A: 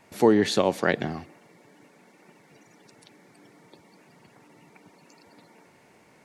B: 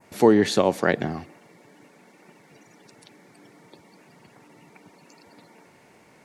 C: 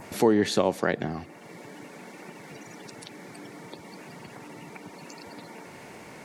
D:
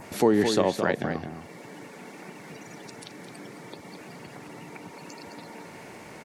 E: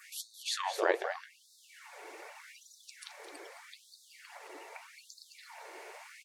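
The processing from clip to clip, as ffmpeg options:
-af "adynamicequalizer=threshold=0.00708:dfrequency=3400:dqfactor=0.92:tfrequency=3400:tqfactor=0.92:attack=5:release=100:ratio=0.375:range=2.5:mode=cutabove:tftype=bell,volume=2.5dB"
-filter_complex "[0:a]asplit=2[a][b];[b]acompressor=mode=upward:threshold=-25dB:ratio=2.5,volume=-1dB[c];[a][c]amix=inputs=2:normalize=0,alimiter=limit=-4dB:level=0:latency=1:release=460,volume=-6dB"
-filter_complex "[0:a]asplit=2[a][b];[b]adelay=215.7,volume=-7dB,highshelf=f=4k:g=-4.85[c];[a][c]amix=inputs=2:normalize=0"
-af "flanger=delay=3.4:depth=9:regen=68:speed=1.8:shape=sinusoidal,afftfilt=real='re*gte(b*sr/1024,300*pow(3600/300,0.5+0.5*sin(2*PI*0.82*pts/sr)))':imag='im*gte(b*sr/1024,300*pow(3600/300,0.5+0.5*sin(2*PI*0.82*pts/sr)))':win_size=1024:overlap=0.75,volume=1dB"

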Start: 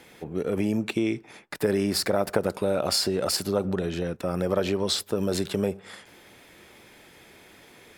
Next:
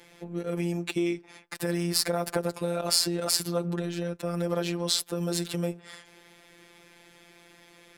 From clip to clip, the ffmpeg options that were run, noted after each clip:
-af "aemphasis=mode=production:type=50fm,adynamicsmooth=sensitivity=6.5:basefreq=6k,afftfilt=real='hypot(re,im)*cos(PI*b)':imag='0':win_size=1024:overlap=0.75"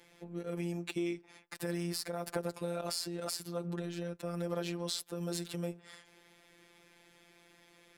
-af "alimiter=limit=-9.5dB:level=0:latency=1:release=347,volume=-7.5dB"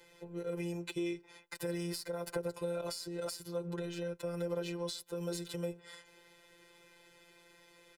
-filter_complex "[0:a]aecho=1:1:2:0.91,acrossover=split=430[a][b];[b]acompressor=threshold=-37dB:ratio=5[c];[a][c]amix=inputs=2:normalize=0,volume=-1.5dB"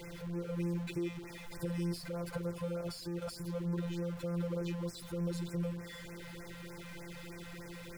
-af "aeval=exprs='val(0)+0.5*0.0119*sgn(val(0))':c=same,bass=f=250:g=10,treble=f=4k:g=-5,afftfilt=real='re*(1-between(b*sr/1024,280*pow(3700/280,0.5+0.5*sin(2*PI*3.3*pts/sr))/1.41,280*pow(3700/280,0.5+0.5*sin(2*PI*3.3*pts/sr))*1.41))':imag='im*(1-between(b*sr/1024,280*pow(3700/280,0.5+0.5*sin(2*PI*3.3*pts/sr))/1.41,280*pow(3700/280,0.5+0.5*sin(2*PI*3.3*pts/sr))*1.41))':win_size=1024:overlap=0.75,volume=-5dB"

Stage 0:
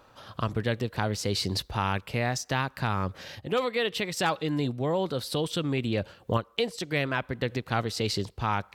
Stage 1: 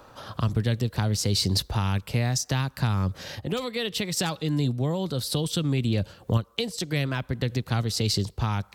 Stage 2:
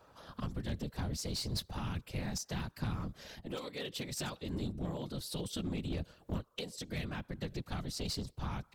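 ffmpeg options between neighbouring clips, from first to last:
-filter_complex "[0:a]equalizer=f=2.6k:w=0.97:g=-4,acrossover=split=210|3000[a][b][c];[b]acompressor=threshold=-43dB:ratio=2.5[d];[a][d][c]amix=inputs=3:normalize=0,volume=7.5dB"
-af "afftfilt=real='hypot(re,im)*cos(2*PI*random(0))':imag='hypot(re,im)*sin(2*PI*random(1))':win_size=512:overlap=0.75,aeval=exprs='clip(val(0),-1,0.0398)':c=same,volume=-6dB"

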